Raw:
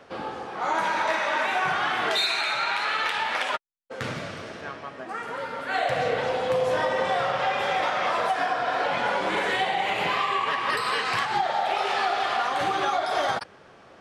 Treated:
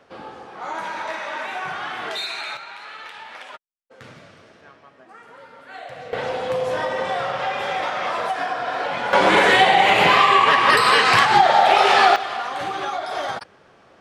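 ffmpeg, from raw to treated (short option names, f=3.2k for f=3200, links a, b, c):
-af "asetnsamples=n=441:p=0,asendcmd='2.57 volume volume -11.5dB;6.13 volume volume 0.5dB;9.13 volume volume 11dB;12.16 volume volume -1.5dB',volume=-4dB"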